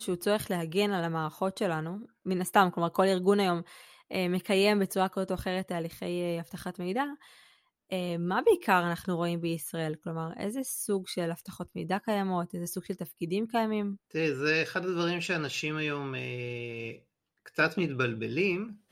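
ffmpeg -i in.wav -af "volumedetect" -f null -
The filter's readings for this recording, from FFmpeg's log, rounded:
mean_volume: -30.6 dB
max_volume: -9.3 dB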